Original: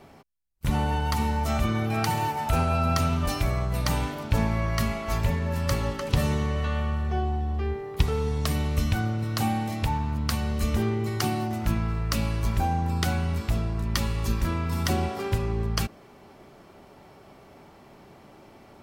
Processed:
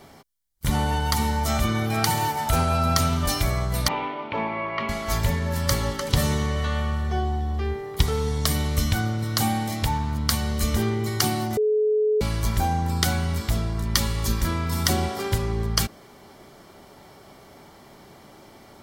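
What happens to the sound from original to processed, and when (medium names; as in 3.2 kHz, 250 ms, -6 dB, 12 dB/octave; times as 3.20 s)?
3.88–4.89 s: cabinet simulation 310–2700 Hz, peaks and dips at 360 Hz +4 dB, 970 Hz +6 dB, 1.6 kHz -9 dB, 2.5 kHz +7 dB
11.57–12.21 s: bleep 427 Hz -19.5 dBFS
whole clip: treble shelf 2.5 kHz +8.5 dB; band-stop 2.6 kHz, Q 6.4; trim +1.5 dB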